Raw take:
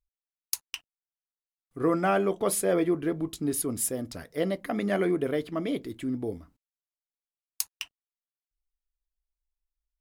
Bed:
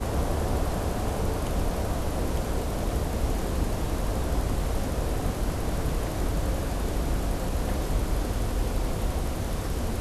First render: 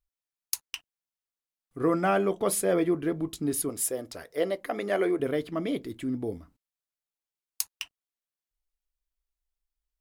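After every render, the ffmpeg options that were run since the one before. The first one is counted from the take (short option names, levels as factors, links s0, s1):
-filter_complex "[0:a]asettb=1/sr,asplit=3[s0][s1][s2];[s0]atrim=end=3.694[s3];[s1]atrim=start=3.69:end=5.2,asetpts=PTS-STARTPTS,afade=t=in:d=0.004:c=qsin,afade=t=out:st=1.506:d=0.004:c=qsin,lowshelf=f=300:t=q:w=1.5:g=-8[s4];[s2]atrim=start=5.196[s5];[s3][s4]acrossfade=d=0.004:c1=hsin:c2=qsin[s6];[s6][s5]acrossfade=d=0.004:c1=qsin:c2=hsin"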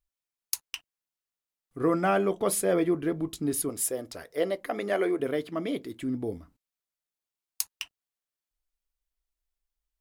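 -filter_complex "[0:a]asettb=1/sr,asplit=3[s0][s1][s2];[s0]atrim=end=4.934[s3];[s1]atrim=start=4.93:end=6.02,asetpts=PTS-STARTPTS,afade=t=in:d=0.004:c=qsin,afade=t=out:st=1.086:d=0.004:c=qsin,highpass=f=170:p=1[s4];[s2]atrim=start=6.016[s5];[s3][s4]acrossfade=d=0.004:c1=hsin:c2=qsin[s6];[s6][s5]acrossfade=d=0.004:c1=qsin:c2=hsin"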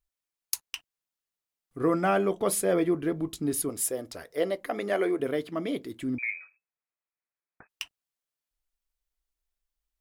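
-filter_complex "[0:a]asettb=1/sr,asplit=3[s0][s1][s2];[s0]atrim=end=6.184[s3];[s1]atrim=start=6.18:end=7.69,asetpts=PTS-STARTPTS,afade=t=in:d=0.004:c=qsin,afade=t=out:st=1.506:d=0.004:c=qsin,lowpass=f=2200:t=q:w=0.5098,lowpass=f=2200:t=q:w=0.6013,lowpass=f=2200:t=q:w=0.9,lowpass=f=2200:t=q:w=2.563,afreqshift=-2600[s4];[s2]atrim=start=7.686[s5];[s3][s4]acrossfade=d=0.004:c1=hsin:c2=qsin[s6];[s6][s5]acrossfade=d=0.004:c1=qsin:c2=hsin"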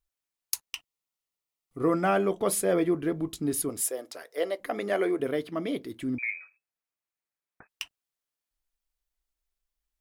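-filter_complex "[0:a]asettb=1/sr,asplit=3[s0][s1][s2];[s0]atrim=end=0.654[s3];[s1]atrim=start=0.65:end=1.88,asetpts=PTS-STARTPTS,afade=t=in:d=0.004:c=qsin,afade=t=out:st=1.226:d=0.004:c=qsin,asuperstop=centerf=1600:order=4:qfactor=5.3[s4];[s2]atrim=start=1.876[s5];[s3][s4]acrossfade=d=0.004:c1=hsin:c2=qsin[s6];[s6][s5]acrossfade=d=0.004:c1=qsin:c2=hsin,asettb=1/sr,asplit=3[s7][s8][s9];[s7]atrim=end=3.814[s10];[s8]atrim=start=3.81:end=4.6,asetpts=PTS-STARTPTS,afade=t=in:d=0.004:c=qsin,afade=t=out:st=0.786:d=0.004:c=qsin,highpass=390[s11];[s9]atrim=start=4.596[s12];[s10][s11]acrossfade=d=0.004:c1=hsin:c2=qsin[s13];[s13][s12]acrossfade=d=0.004:c1=qsin:c2=hsin,asettb=1/sr,asplit=3[s14][s15][s16];[s14]atrim=end=5.264[s17];[s15]atrim=start=5.26:end=6.02,asetpts=PTS-STARTPTS,afade=t=in:d=0.004:c=qsin,afade=t=out:st=0.756:d=0.004:c=qsin,bandreject=f=7300:w=7.8[s18];[s16]atrim=start=6.016[s19];[s17][s18]acrossfade=d=0.004:c1=hsin:c2=qsin[s20];[s20][s19]acrossfade=d=0.004:c1=qsin:c2=hsin"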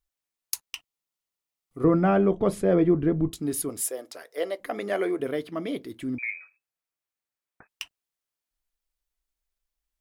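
-filter_complex "[0:a]asettb=1/sr,asplit=3[s0][s1][s2];[s0]atrim=end=1.844[s3];[s1]atrim=start=1.84:end=3.32,asetpts=PTS-STARTPTS,afade=t=in:d=0.004:c=qsin,afade=t=out:st=1.476:d=0.004:c=qsin,aemphasis=mode=reproduction:type=riaa[s4];[s2]atrim=start=3.316[s5];[s3][s4]acrossfade=d=0.004:c1=hsin:c2=qsin[s6];[s6][s5]acrossfade=d=0.004:c1=qsin:c2=hsin"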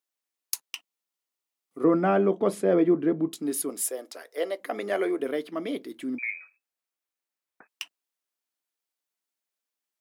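-af "highpass=f=210:w=0.5412,highpass=f=210:w=1.3066"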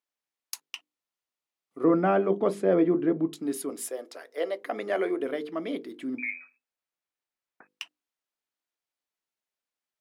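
-af "lowpass=f=4000:p=1,bandreject=f=50:t=h:w=6,bandreject=f=100:t=h:w=6,bandreject=f=150:t=h:w=6,bandreject=f=200:t=h:w=6,bandreject=f=250:t=h:w=6,bandreject=f=300:t=h:w=6,bandreject=f=350:t=h:w=6,bandreject=f=400:t=h:w=6,bandreject=f=450:t=h:w=6,bandreject=f=500:t=h:w=6"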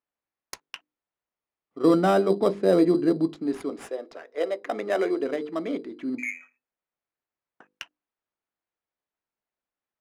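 -filter_complex "[0:a]asplit=2[s0][s1];[s1]acrusher=samples=10:mix=1:aa=0.000001,volume=0.422[s2];[s0][s2]amix=inputs=2:normalize=0,adynamicsmooth=sensitivity=4.5:basefreq=3300"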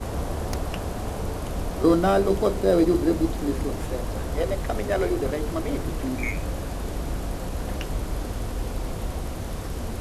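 -filter_complex "[1:a]volume=0.794[s0];[0:a][s0]amix=inputs=2:normalize=0"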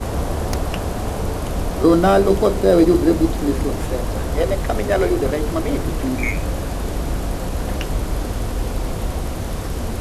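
-af "volume=2.11,alimiter=limit=0.708:level=0:latency=1"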